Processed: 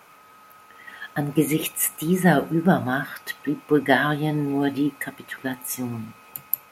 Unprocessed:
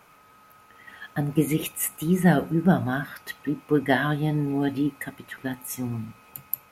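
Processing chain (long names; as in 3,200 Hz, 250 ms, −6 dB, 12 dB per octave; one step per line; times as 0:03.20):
low-shelf EQ 150 Hz −11 dB
level +4.5 dB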